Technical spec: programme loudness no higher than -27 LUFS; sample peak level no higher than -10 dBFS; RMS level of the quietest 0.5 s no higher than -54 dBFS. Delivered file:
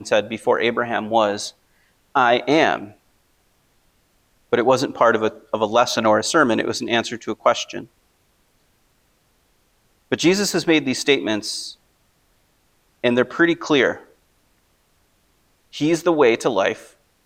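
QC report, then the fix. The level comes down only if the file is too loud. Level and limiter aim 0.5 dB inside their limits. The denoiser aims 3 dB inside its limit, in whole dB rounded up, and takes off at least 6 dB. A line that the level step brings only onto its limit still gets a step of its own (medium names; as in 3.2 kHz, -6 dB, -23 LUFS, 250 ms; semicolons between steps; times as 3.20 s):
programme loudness -19.5 LUFS: fail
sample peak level -3.5 dBFS: fail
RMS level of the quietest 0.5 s -62 dBFS: pass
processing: trim -8 dB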